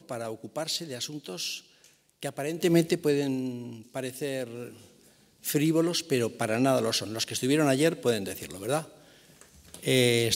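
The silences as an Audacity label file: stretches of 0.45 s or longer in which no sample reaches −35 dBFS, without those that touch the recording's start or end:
1.580000	2.230000	silence
4.680000	5.450000	silence
8.830000	9.410000	silence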